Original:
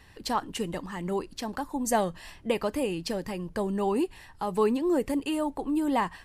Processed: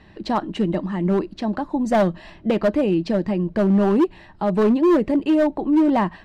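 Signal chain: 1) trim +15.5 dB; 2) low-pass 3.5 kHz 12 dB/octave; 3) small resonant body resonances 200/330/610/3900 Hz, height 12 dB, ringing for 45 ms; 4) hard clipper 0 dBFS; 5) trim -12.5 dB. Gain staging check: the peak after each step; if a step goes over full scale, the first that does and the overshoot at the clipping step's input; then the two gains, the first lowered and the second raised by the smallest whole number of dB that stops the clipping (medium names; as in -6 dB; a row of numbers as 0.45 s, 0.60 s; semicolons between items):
+2.5 dBFS, +2.5 dBFS, +9.0 dBFS, 0.0 dBFS, -12.5 dBFS; step 1, 9.0 dB; step 1 +6.5 dB, step 5 -3.5 dB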